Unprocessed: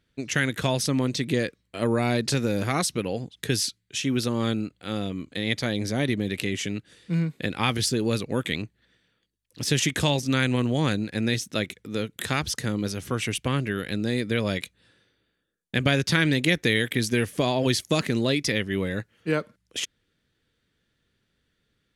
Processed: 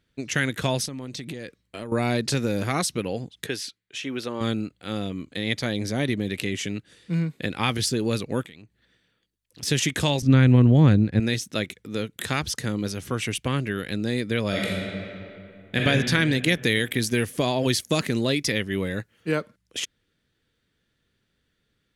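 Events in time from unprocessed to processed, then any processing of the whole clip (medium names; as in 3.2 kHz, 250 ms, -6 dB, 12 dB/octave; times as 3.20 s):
0.85–1.92 s: compression 16:1, threshold -30 dBFS
3.46–4.41 s: tone controls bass -14 dB, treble -10 dB
8.45–9.63 s: compression 8:1, threshold -42 dBFS
10.22–11.20 s: RIAA curve playback
14.48–15.81 s: reverb throw, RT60 2.7 s, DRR -4.5 dB
16.47–19.40 s: treble shelf 9.8 kHz +6 dB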